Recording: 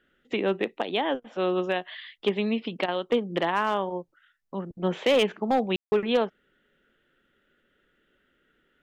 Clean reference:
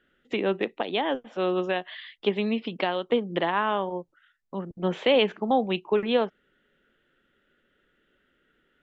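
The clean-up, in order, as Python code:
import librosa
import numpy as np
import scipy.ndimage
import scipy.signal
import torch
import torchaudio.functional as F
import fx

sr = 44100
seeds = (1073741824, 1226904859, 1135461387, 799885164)

y = fx.fix_declip(x, sr, threshold_db=-15.5)
y = fx.fix_ambience(y, sr, seeds[0], print_start_s=4.03, print_end_s=4.53, start_s=5.76, end_s=5.92)
y = fx.fix_interpolate(y, sr, at_s=(1.2, 2.86), length_ms=21.0)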